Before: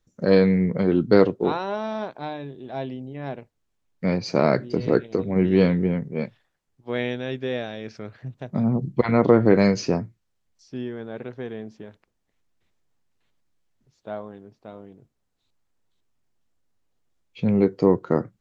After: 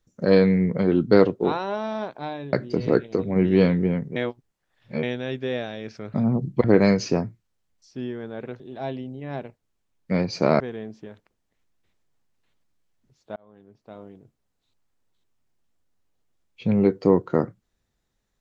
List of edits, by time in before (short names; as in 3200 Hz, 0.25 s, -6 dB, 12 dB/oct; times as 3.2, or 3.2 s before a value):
2.53–4.53 move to 11.37
6.16–7.03 reverse
8.14–8.54 cut
9.04–9.41 cut
14.13–14.8 fade in